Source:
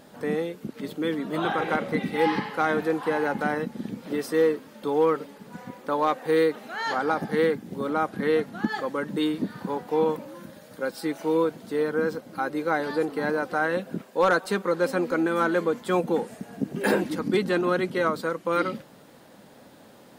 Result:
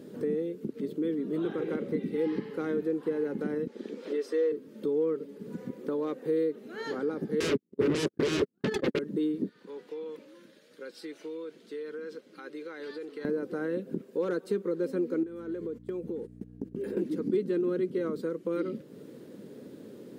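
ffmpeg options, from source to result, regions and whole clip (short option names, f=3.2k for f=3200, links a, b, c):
-filter_complex "[0:a]asettb=1/sr,asplit=3[a][b][c];[a]atrim=end=3.674[d];[b]atrim=start=3.67:end=4.52,asetpts=PTS-STARTPTS,afade=t=in:d=0.004:c=qsin,afade=t=out:st=0.846:d=0.004:c=qsin,highpass=f=190:w=0.5412,highpass=f=190:w=1.3066,acrossover=split=460 7400:gain=0.0891 1 0.158[e][f][g];[e][f][g]amix=inputs=3:normalize=0,acontrast=51[h];[c]atrim=start=4.516[i];[d][h]acrossfade=d=0.004:c1=hsin:c2=qsin[j];[j][i]acrossfade=d=0.004:c1=qsin:c2=hsin,asettb=1/sr,asplit=3[k][l][m];[k]atrim=end=7.404[n];[l]atrim=start=7.4:end=8.99,asetpts=PTS-STARTPTS,afade=t=in:d=0.004:c=qsin,afade=t=out:st=1.586:d=0.004:c=qsin,agate=range=-57dB:threshold=-30dB:ratio=16:release=100:detection=peak,highshelf=f=5.8k:g=-9,aeval=exprs='0.237*sin(PI/2*7.94*val(0)/0.237)':c=same[o];[m]atrim=start=8.986[p];[n][o]acrossfade=d=0.004:c1=hsin:c2=qsin[q];[q][p]acrossfade=d=0.004:c1=qsin:c2=hsin,asettb=1/sr,asplit=3[r][s][t];[r]atrim=end=9.494[u];[s]atrim=start=9.49:end=13.25,asetpts=PTS-STARTPTS,afade=t=in:d=0.004:c=qsin,afade=t=out:st=3.756:d=0.004:c=qsin,acompressor=threshold=-25dB:ratio=4:attack=3.2:release=140:knee=1:detection=peak,bandpass=f=3.1k:t=q:w=0.78[v];[t]atrim=start=13.246[w];[u][v]acrossfade=d=0.004:c1=hsin:c2=qsin[x];[x][w]acrossfade=d=0.004:c1=qsin:c2=hsin,asettb=1/sr,asplit=3[y][z][aa];[y]atrim=end=15.234[ab];[z]atrim=start=15.23:end=16.97,asetpts=PTS-STARTPTS,afade=t=in:d=0.004:c=qsin,afade=t=out:st=1.736:d=0.004:c=qsin,agate=range=-26dB:threshold=-35dB:ratio=16:release=100:detection=peak,acompressor=threshold=-36dB:ratio=4:attack=3.2:release=140:knee=1:detection=peak,aeval=exprs='val(0)+0.00398*(sin(2*PI*60*n/s)+sin(2*PI*2*60*n/s)/2+sin(2*PI*3*60*n/s)/3+sin(2*PI*4*60*n/s)/4+sin(2*PI*5*60*n/s)/5)':c=same[ac];[aa]atrim=start=16.966[ad];[ab][ac]acrossfade=d=0.004:c1=hsin:c2=qsin[ae];[ae][ad]acrossfade=d=0.004:c1=qsin:c2=hsin,highpass=110,lowshelf=f=560:t=q:w=3:g=10,acompressor=threshold=-30dB:ratio=2,volume=-6dB"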